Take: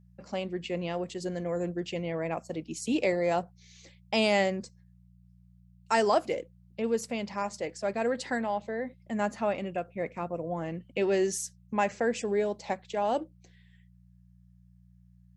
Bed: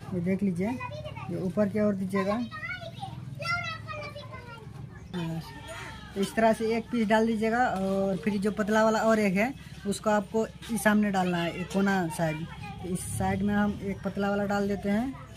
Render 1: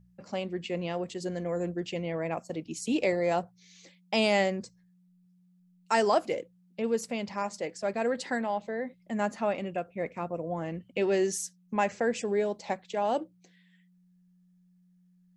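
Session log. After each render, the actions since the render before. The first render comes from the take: de-hum 60 Hz, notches 2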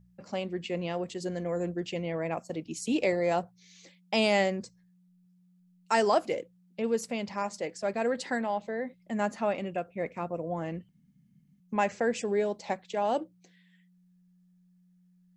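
10.89–11.60 s: room tone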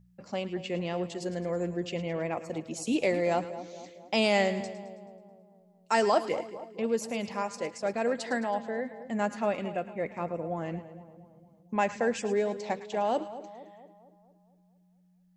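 two-band feedback delay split 1 kHz, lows 229 ms, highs 108 ms, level -13 dB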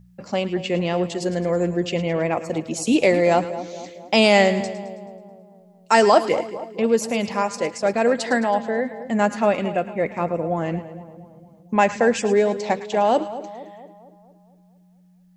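trim +10 dB

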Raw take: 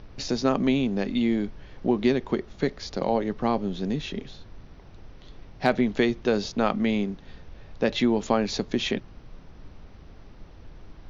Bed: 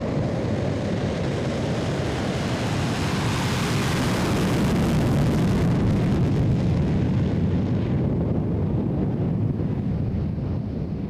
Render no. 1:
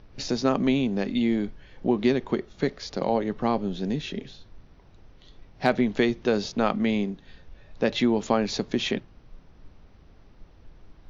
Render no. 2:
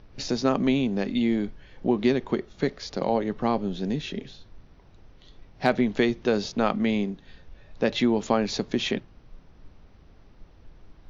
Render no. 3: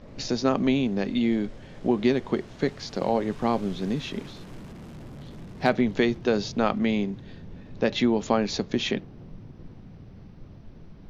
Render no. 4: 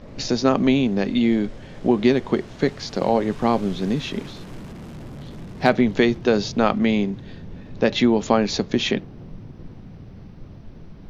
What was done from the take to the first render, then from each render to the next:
noise print and reduce 6 dB
no audible change
add bed -22 dB
trim +5 dB

